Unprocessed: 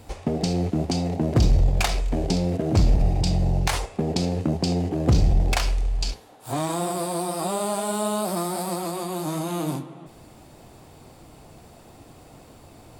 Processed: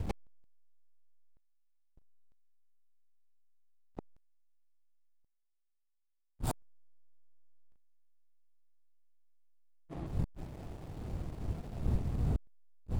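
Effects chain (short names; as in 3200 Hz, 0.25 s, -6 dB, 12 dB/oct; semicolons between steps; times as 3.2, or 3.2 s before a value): wind noise 110 Hz -29 dBFS; flipped gate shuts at -21 dBFS, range -40 dB; backlash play -42 dBFS; gain +1 dB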